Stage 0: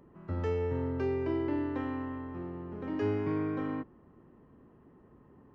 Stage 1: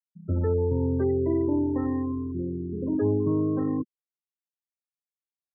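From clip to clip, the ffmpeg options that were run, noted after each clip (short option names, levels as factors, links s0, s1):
-filter_complex "[0:a]afftfilt=real='re*gte(hypot(re,im),0.0251)':imag='im*gte(hypot(re,im),0.0251)':win_size=1024:overlap=0.75,tiltshelf=f=850:g=5.5,asplit=2[s0][s1];[s1]alimiter=level_in=1.19:limit=0.0631:level=0:latency=1:release=171,volume=0.841,volume=0.841[s2];[s0][s2]amix=inputs=2:normalize=0"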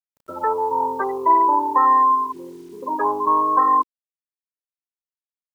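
-af "acontrast=82,highpass=f=1000:t=q:w=11,acrusher=bits=9:mix=0:aa=0.000001,volume=2.11"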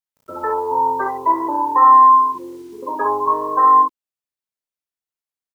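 -af "aecho=1:1:21|37|60:0.398|0.335|0.668"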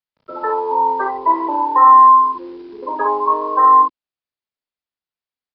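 -filter_complex "[0:a]acrossover=split=200[s0][s1];[s0]aeval=exprs='(mod(299*val(0)+1,2)-1)/299':c=same[s2];[s2][s1]amix=inputs=2:normalize=0,aresample=11025,aresample=44100,volume=1.19"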